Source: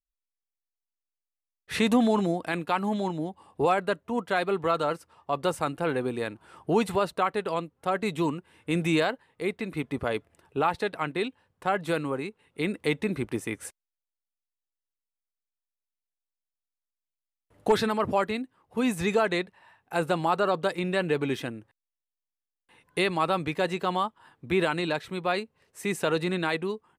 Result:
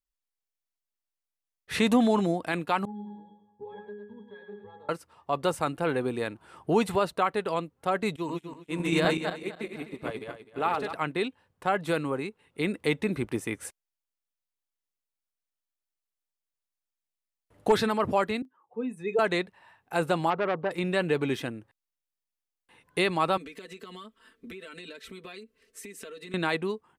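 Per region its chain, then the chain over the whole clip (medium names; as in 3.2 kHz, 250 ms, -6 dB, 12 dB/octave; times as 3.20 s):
2.85–4.89 s: pitch-class resonator G#, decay 0.4 s + thinning echo 107 ms, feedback 42%, high-pass 270 Hz, level -6 dB + compression 3:1, threshold -38 dBFS
8.16–10.93 s: backward echo that repeats 127 ms, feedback 69%, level -1 dB + bass shelf 110 Hz -7 dB + upward expansion 2.5:1, over -37 dBFS
18.42–19.19 s: spectral contrast enhancement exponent 1.9 + high-pass 390 Hz + doubling 31 ms -13 dB
20.30–20.71 s: low-pass 1.3 kHz + transformer saturation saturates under 1.2 kHz
23.37–26.34 s: static phaser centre 340 Hz, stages 4 + comb 4.5 ms, depth 98% + compression 20:1, threshold -39 dBFS
whole clip: none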